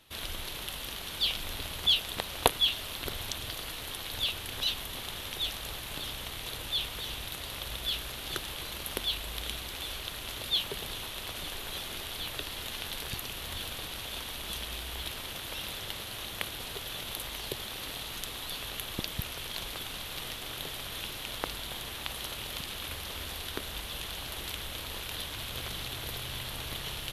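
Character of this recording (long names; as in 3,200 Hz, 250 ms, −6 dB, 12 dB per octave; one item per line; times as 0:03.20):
background noise floor −41 dBFS
spectral slope −2.0 dB per octave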